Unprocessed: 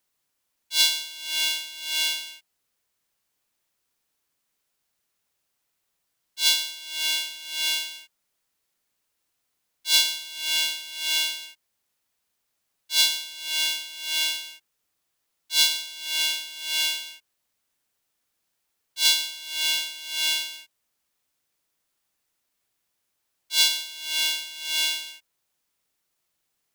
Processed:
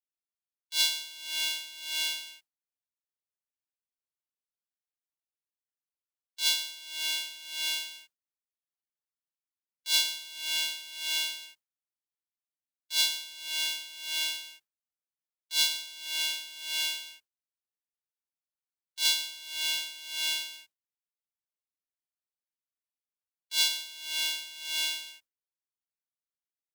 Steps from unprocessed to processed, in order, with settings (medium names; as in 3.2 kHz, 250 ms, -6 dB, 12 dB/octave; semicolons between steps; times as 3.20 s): gate with hold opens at -29 dBFS; trim -6 dB